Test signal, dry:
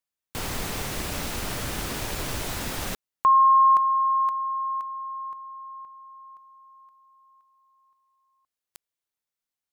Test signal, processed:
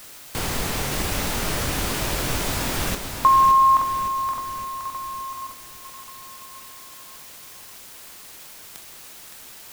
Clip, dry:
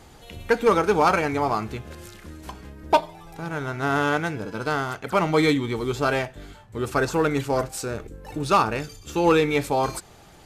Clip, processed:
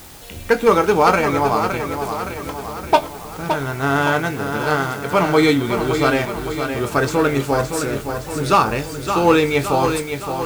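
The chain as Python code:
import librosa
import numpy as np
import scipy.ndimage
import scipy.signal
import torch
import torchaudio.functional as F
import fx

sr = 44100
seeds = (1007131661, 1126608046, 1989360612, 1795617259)

p1 = fx.doubler(x, sr, ms=22.0, db=-10.5)
p2 = fx.echo_feedback(p1, sr, ms=566, feedback_pct=54, wet_db=-7.5)
p3 = fx.quant_dither(p2, sr, seeds[0], bits=6, dither='triangular')
p4 = p2 + (p3 * 10.0 ** (-8.0 / 20.0))
y = p4 * 10.0 ** (1.5 / 20.0)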